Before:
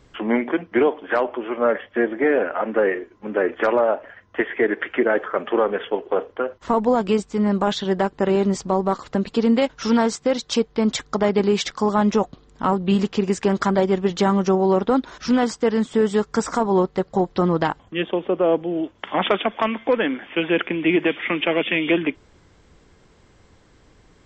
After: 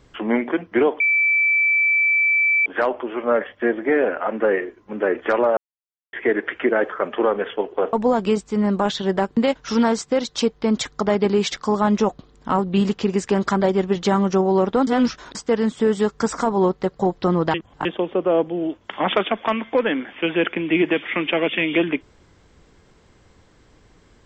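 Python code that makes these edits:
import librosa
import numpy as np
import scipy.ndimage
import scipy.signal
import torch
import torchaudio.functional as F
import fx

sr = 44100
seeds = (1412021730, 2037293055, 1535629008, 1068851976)

y = fx.edit(x, sr, fx.insert_tone(at_s=1.0, length_s=1.66, hz=2320.0, db=-14.5),
    fx.silence(start_s=3.91, length_s=0.56),
    fx.cut(start_s=6.27, length_s=0.48),
    fx.cut(start_s=8.19, length_s=1.32),
    fx.reverse_span(start_s=15.01, length_s=0.48),
    fx.reverse_span(start_s=17.68, length_s=0.31), tone=tone)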